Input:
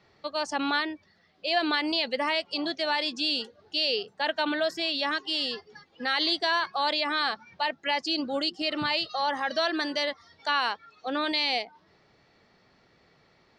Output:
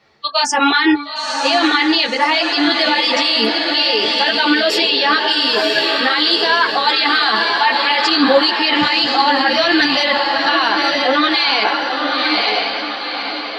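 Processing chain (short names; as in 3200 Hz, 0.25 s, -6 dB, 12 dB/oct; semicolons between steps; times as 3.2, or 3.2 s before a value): spectral noise reduction 22 dB; low shelf 250 Hz -8 dB; de-hum 286.7 Hz, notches 9; reverse; compressor 6:1, threshold -40 dBFS, peak gain reduction 17 dB; reverse; diffused feedback echo 0.961 s, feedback 47%, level -5 dB; maximiser +34.5 dB; ensemble effect; gain -1 dB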